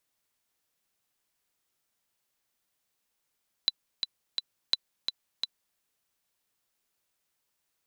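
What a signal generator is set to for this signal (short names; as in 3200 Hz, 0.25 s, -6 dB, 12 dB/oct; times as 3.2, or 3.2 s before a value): metronome 171 bpm, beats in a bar 3, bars 2, 3990 Hz, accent 6 dB -10 dBFS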